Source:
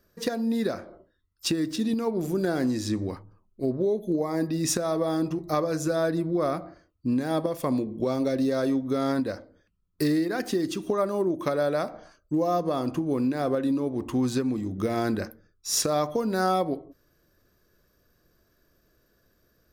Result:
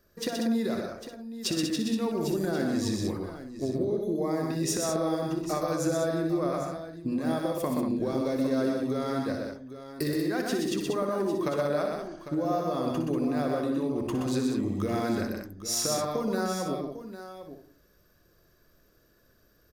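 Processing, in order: notches 60/120/180/240/300 Hz; compressor, threshold -27 dBFS, peak gain reduction 7.5 dB; tapped delay 61/96/124/189/801/862 ms -8.5/-17/-4/-6.5/-12/-18.5 dB

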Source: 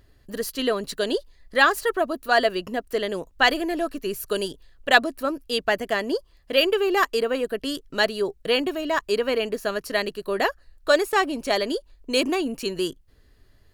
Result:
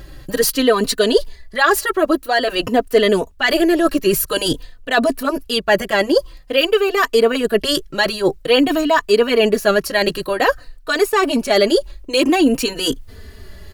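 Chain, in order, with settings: reverse; compressor 10:1, threshold -31 dBFS, peak gain reduction 21 dB; reverse; maximiser +24 dB; endless flanger 3.2 ms -0.5 Hz; gain -1 dB

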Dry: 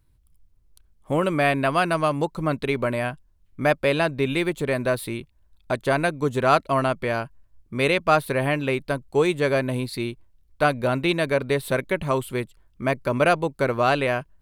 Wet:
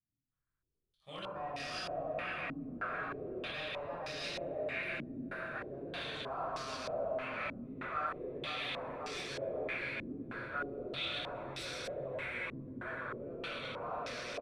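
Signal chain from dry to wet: regenerating reverse delay 0.262 s, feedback 76%, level -1 dB; Doppler pass-by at 6.54, 11 m/s, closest 13 m; shoebox room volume 770 m³, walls furnished, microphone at 6.1 m; reverse; compressor 12:1, threshold -23 dBFS, peak gain reduction 21.5 dB; reverse; differentiator; frequency-shifting echo 0.125 s, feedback 62%, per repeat -33 Hz, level -8 dB; in parallel at -8 dB: wrapped overs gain 40.5 dB; on the sum: low shelf 310 Hz +11 dB; stepped low-pass 3.2 Hz 260–5300 Hz; gain -1 dB

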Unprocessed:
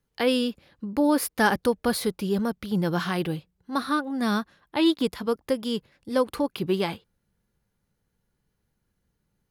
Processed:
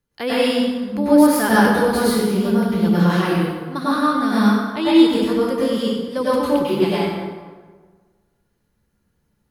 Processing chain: notch 800 Hz, Q 23; plate-style reverb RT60 1.5 s, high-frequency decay 0.6×, pre-delay 85 ms, DRR -9 dB; gain -2 dB

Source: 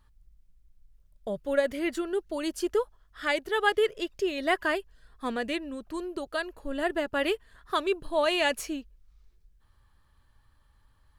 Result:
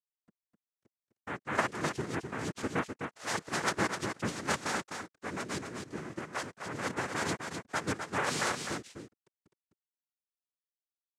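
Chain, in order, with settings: bit-crush 8-bit; noise vocoder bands 3; echo 0.255 s -6.5 dB; gain -6.5 dB

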